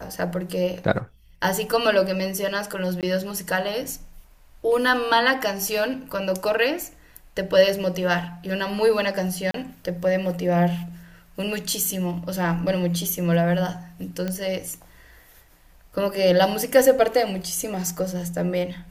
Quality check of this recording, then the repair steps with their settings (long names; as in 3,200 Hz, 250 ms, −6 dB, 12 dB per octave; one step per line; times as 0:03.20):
0:03.01–0:03.03: drop-out 18 ms
0:09.51–0:09.54: drop-out 33 ms
0:14.28: click −15 dBFS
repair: click removal
repair the gap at 0:03.01, 18 ms
repair the gap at 0:09.51, 33 ms